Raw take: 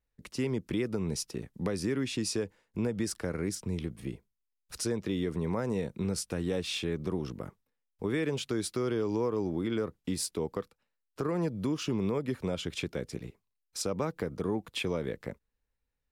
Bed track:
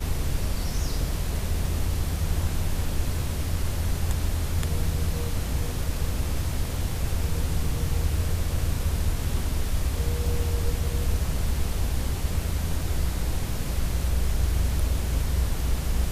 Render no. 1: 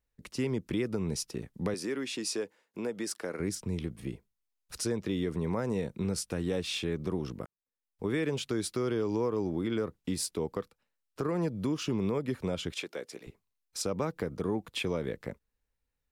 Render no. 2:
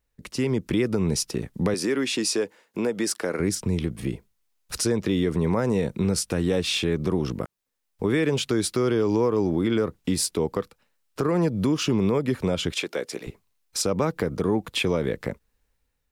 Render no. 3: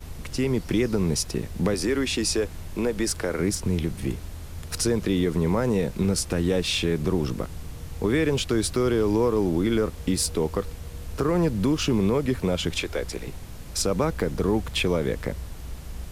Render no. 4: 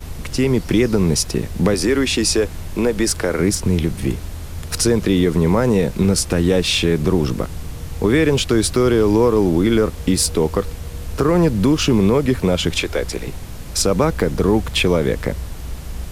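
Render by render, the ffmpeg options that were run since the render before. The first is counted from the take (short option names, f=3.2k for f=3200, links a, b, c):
-filter_complex "[0:a]asettb=1/sr,asplit=3[a][b][c];[a]atrim=end=1.744[d];[b]atrim=start=1.74:end=3.4,asetpts=PTS-STARTPTS,afade=t=in:d=0.004:c=qsin,afade=t=out:st=1.656:d=0.004:c=qsin,highpass=310[e];[c]atrim=start=3.396[f];[d][e]acrossfade=d=0.004:c1=hsin:c2=qsin[g];[g][f]acrossfade=d=0.004:c1=qsin:c2=hsin,asettb=1/sr,asplit=3[h][i][j];[h]atrim=end=12.724[k];[i]atrim=start=12.72:end=13.27,asetpts=PTS-STARTPTS,afade=t=in:d=0.004:c=qsin,afade=t=out:st=0.546:d=0.004:c=qsin,highpass=430[l];[j]atrim=start=13.266[m];[k][l]acrossfade=d=0.004:c1=hsin:c2=qsin[n];[n][m]acrossfade=d=0.004:c1=qsin:c2=hsin,asplit=2[o][p];[o]atrim=end=7.46,asetpts=PTS-STARTPTS,afade=t=out:st=7.456:d=0.004:c=hsin[q];[p]atrim=start=7.46,asetpts=PTS-STARTPTS,afade=t=in:d=0.6:c=qua[r];[q][r]concat=n=2:v=0:a=1"
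-filter_complex "[0:a]dynaudnorm=f=140:g=7:m=5dB,asplit=2[a][b];[b]alimiter=level_in=1dB:limit=-24dB:level=0:latency=1:release=162,volume=-1dB,volume=1dB[c];[a][c]amix=inputs=2:normalize=0"
-filter_complex "[1:a]volume=-11dB[a];[0:a][a]amix=inputs=2:normalize=0"
-af "volume=7.5dB"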